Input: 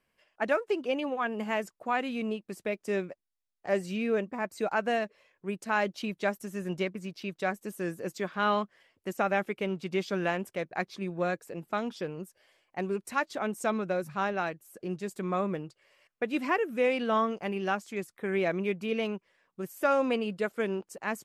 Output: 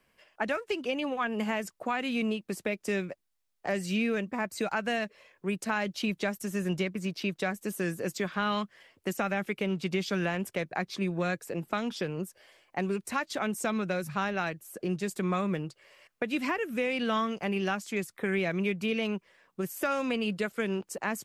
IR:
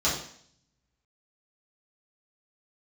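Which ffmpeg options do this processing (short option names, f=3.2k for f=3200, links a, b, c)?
-filter_complex "[0:a]acrossover=split=180|1600[a][b][c];[b]acompressor=threshold=-38dB:ratio=6[d];[c]alimiter=level_in=9.5dB:limit=-24dB:level=0:latency=1:release=89,volume=-9.5dB[e];[a][d][e]amix=inputs=3:normalize=0,volume=7dB"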